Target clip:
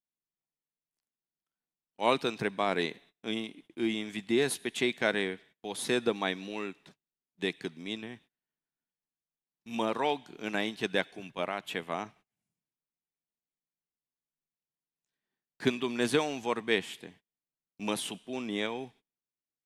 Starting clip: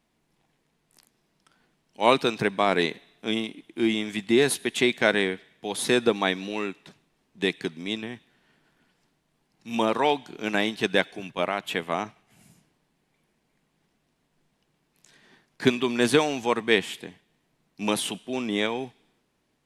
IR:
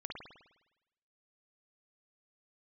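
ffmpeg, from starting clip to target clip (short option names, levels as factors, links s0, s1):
-af "agate=range=0.0501:threshold=0.00355:ratio=16:detection=peak,volume=0.447"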